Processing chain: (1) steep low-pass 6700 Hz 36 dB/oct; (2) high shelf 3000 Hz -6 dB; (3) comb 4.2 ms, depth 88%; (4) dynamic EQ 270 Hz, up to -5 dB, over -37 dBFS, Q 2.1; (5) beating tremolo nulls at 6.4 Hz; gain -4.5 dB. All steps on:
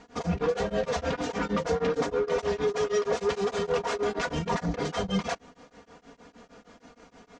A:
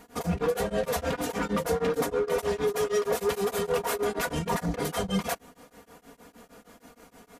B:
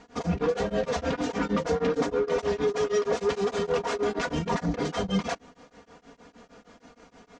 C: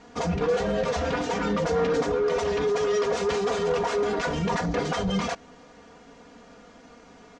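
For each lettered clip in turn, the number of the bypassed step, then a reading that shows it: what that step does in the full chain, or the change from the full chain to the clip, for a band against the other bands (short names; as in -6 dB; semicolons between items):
1, 8 kHz band +5.0 dB; 4, loudness change +1.0 LU; 5, crest factor change -2.5 dB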